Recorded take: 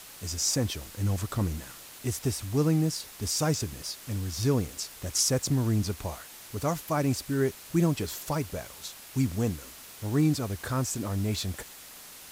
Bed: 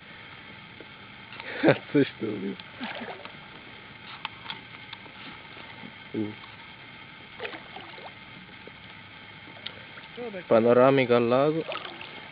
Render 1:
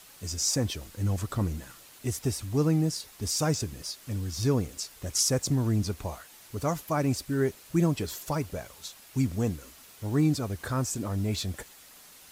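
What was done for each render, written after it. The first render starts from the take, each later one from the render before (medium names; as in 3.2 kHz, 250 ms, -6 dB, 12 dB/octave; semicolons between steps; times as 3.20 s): noise reduction 6 dB, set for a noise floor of -47 dBFS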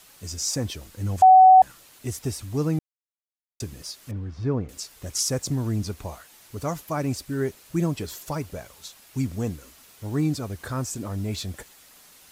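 1.22–1.62 s: bleep 751 Hz -8 dBFS; 2.79–3.60 s: mute; 4.11–4.69 s: low-pass 1.8 kHz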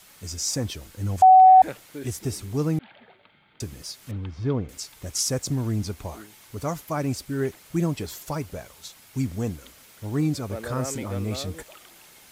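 add bed -15.5 dB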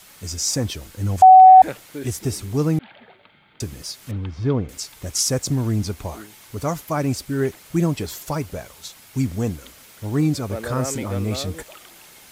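trim +4.5 dB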